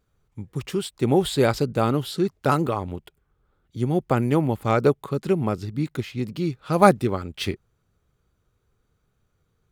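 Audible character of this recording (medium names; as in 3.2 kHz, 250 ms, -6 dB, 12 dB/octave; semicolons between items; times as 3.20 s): noise floor -71 dBFS; spectral tilt -6.0 dB/octave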